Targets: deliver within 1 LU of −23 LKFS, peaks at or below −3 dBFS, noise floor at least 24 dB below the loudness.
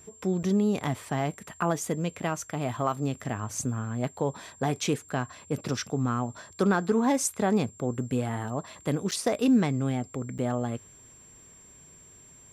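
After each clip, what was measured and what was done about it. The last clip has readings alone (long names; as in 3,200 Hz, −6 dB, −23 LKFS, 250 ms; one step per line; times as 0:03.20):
number of dropouts 3; longest dropout 6.7 ms; interfering tone 7,400 Hz; level of the tone −51 dBFS; integrated loudness −29.0 LKFS; sample peak −13.0 dBFS; target loudness −23.0 LKFS
→ repair the gap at 0:00.43/0:09.11/0:10.38, 6.7 ms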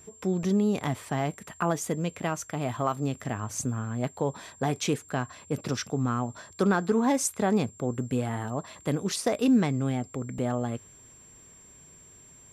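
number of dropouts 0; interfering tone 7,400 Hz; level of the tone −51 dBFS
→ notch filter 7,400 Hz, Q 30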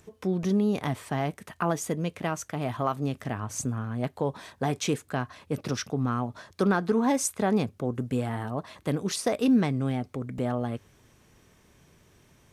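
interfering tone none found; integrated loudness −29.0 LKFS; sample peak −13.0 dBFS; target loudness −23.0 LKFS
→ level +6 dB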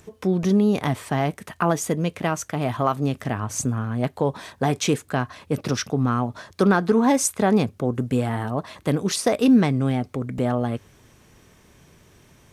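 integrated loudness −23.0 LKFS; sample peak −7.0 dBFS; background noise floor −55 dBFS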